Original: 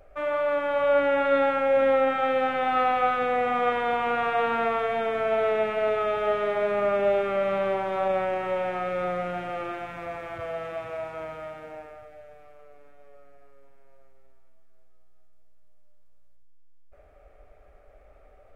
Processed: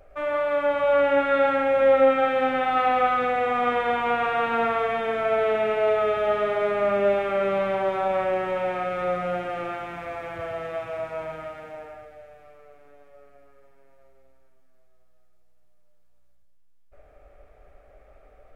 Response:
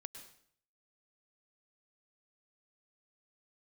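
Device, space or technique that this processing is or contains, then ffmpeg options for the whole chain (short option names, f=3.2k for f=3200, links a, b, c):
bathroom: -filter_complex "[1:a]atrim=start_sample=2205[a];[0:a][a]afir=irnorm=-1:irlink=0,volume=6.5dB"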